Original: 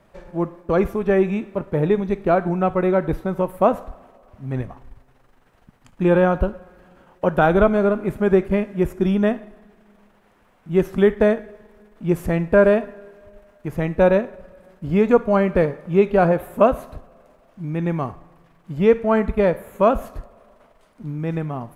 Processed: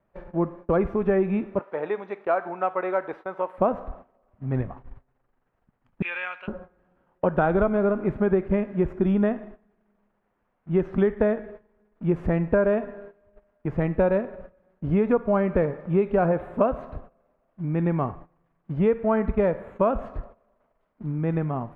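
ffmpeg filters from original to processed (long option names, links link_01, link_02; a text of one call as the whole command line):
ffmpeg -i in.wav -filter_complex "[0:a]asettb=1/sr,asplit=3[link_01][link_02][link_03];[link_01]atrim=end=1.594[link_04];[link_02]atrim=start=1.59:end=3.58,asetpts=PTS-STARTPTS,afade=type=in:duration=0.004:curve=qsin,afade=type=out:start_time=1.986:duration=0.004:curve=qsin,highpass=670[link_05];[link_03]atrim=start=3.576[link_06];[link_04][link_05]acrossfade=duration=0.004:curve1=hsin:curve2=qsin[link_07];[link_07][link_06]acrossfade=duration=0.004:curve1=qsin:curve2=hsin,asettb=1/sr,asplit=3[link_08][link_09][link_10];[link_08]atrim=end=6.024[link_11];[link_09]atrim=start=6.02:end=6.48,asetpts=PTS-STARTPTS,afade=type=in:duration=0.004:curve=qsin,afade=type=out:start_time=0.456:duration=0.004:curve=qsin,highpass=frequency=2400:width_type=q:width=3.9[link_12];[link_10]atrim=start=6.476[link_13];[link_11][link_12]acrossfade=duration=0.004:curve1=hsin:curve2=qsin[link_14];[link_14][link_13]acrossfade=duration=0.004:curve1=qsin:curve2=hsin,agate=range=-15dB:threshold=-41dB:ratio=16:detection=peak,lowpass=2000,acompressor=threshold=-18dB:ratio=4" out.wav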